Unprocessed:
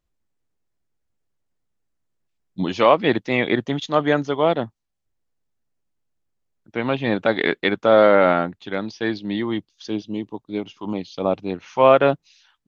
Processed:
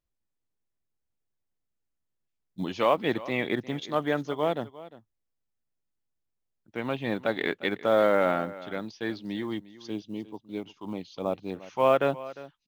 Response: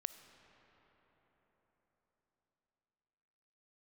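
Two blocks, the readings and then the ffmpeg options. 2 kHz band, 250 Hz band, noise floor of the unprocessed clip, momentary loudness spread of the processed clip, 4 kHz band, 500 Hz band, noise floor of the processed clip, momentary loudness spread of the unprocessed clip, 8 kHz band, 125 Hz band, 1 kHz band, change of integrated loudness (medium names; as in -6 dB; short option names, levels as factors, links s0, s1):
-8.5 dB, -8.5 dB, -76 dBFS, 15 LU, -8.5 dB, -8.5 dB, -81 dBFS, 15 LU, no reading, -8.5 dB, -8.5 dB, -8.5 dB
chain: -af "aecho=1:1:353:0.133,acrusher=bits=9:mode=log:mix=0:aa=0.000001,volume=0.376"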